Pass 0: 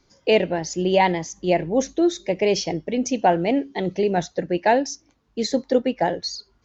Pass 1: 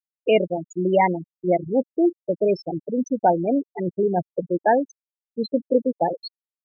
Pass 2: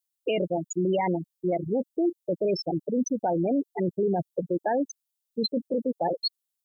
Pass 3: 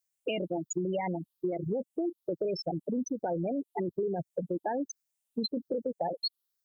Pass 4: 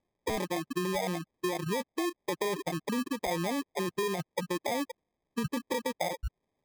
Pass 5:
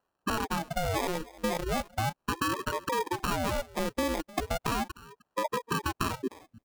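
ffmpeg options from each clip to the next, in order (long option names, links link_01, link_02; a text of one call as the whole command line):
ffmpeg -i in.wav -filter_complex "[0:a]asplit=2[link_01][link_02];[link_02]adelay=932.9,volume=-25dB,highshelf=frequency=4000:gain=-21[link_03];[link_01][link_03]amix=inputs=2:normalize=0,afftfilt=real='re*gte(hypot(re,im),0.251)':imag='im*gte(hypot(re,im),0.251)':win_size=1024:overlap=0.75,acrossover=split=3200[link_04][link_05];[link_05]acompressor=threshold=-38dB:ratio=4:attack=1:release=60[link_06];[link_04][link_06]amix=inputs=2:normalize=0" out.wav
ffmpeg -i in.wav -af "alimiter=limit=-18.5dB:level=0:latency=1:release=10,aexciter=amount=3.1:drive=4:freq=3000" out.wav
ffmpeg -i in.wav -af "afftfilt=real='re*pow(10,7/40*sin(2*PI*(0.55*log(max(b,1)*sr/1024/100)/log(2)-(1.2)*(pts-256)/sr)))':imag='im*pow(10,7/40*sin(2*PI*(0.55*log(max(b,1)*sr/1024/100)/log(2)-(1.2)*(pts-256)/sr)))':win_size=1024:overlap=0.75,acompressor=threshold=-29dB:ratio=6" out.wav
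ffmpeg -i in.wav -af "acrusher=samples=31:mix=1:aa=0.000001" out.wav
ffmpeg -i in.wav -af "aecho=1:1:305:0.0944,aeval=exprs='val(0)*sin(2*PI*450*n/s+450*0.7/0.37*sin(2*PI*0.37*n/s))':channel_layout=same,volume=4.5dB" out.wav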